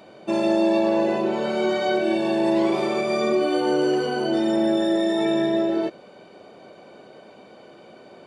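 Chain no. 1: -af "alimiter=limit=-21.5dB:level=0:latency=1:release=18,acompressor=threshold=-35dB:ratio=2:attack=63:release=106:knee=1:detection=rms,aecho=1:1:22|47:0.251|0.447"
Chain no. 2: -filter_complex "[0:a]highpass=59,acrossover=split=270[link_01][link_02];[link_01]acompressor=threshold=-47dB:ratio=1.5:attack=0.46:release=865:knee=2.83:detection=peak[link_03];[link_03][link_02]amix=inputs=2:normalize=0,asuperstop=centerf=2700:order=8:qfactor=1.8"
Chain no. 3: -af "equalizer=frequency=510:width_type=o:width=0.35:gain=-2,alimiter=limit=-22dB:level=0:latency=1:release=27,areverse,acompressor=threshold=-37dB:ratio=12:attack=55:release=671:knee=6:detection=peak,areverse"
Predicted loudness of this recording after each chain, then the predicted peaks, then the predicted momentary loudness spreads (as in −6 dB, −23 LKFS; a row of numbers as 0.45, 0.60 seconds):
−33.0, −23.0, −41.0 LKFS; −21.5, −10.5, −24.0 dBFS; 14, 4, 8 LU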